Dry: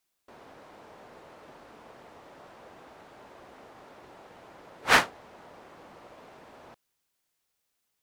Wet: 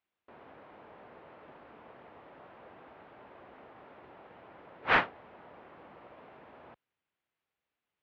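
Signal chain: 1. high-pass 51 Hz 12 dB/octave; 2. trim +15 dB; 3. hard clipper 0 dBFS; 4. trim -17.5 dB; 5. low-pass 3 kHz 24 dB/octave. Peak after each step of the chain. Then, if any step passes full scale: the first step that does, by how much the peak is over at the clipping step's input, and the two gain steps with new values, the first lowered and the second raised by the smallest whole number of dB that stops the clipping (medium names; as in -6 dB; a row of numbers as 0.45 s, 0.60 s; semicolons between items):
-6.0 dBFS, +9.0 dBFS, 0.0 dBFS, -17.5 dBFS, -15.5 dBFS; step 2, 9.0 dB; step 2 +6 dB, step 4 -8.5 dB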